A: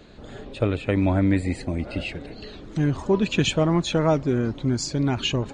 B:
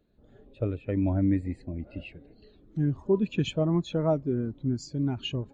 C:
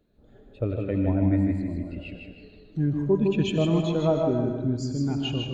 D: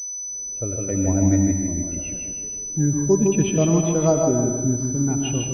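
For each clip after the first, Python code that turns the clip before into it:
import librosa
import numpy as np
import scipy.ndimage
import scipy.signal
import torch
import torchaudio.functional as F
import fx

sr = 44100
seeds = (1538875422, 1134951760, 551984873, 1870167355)

y1 = fx.spectral_expand(x, sr, expansion=1.5)
y1 = y1 * librosa.db_to_amplitude(-4.5)
y2 = fx.echo_feedback(y1, sr, ms=156, feedback_pct=37, wet_db=-5.0)
y2 = fx.rev_freeverb(y2, sr, rt60_s=1.2, hf_ratio=0.9, predelay_ms=55, drr_db=6.5)
y2 = y2 * librosa.db_to_amplitude(1.5)
y3 = fx.fade_in_head(y2, sr, length_s=1.26)
y3 = fx.pwm(y3, sr, carrier_hz=6000.0)
y3 = y3 * librosa.db_to_amplitude(4.5)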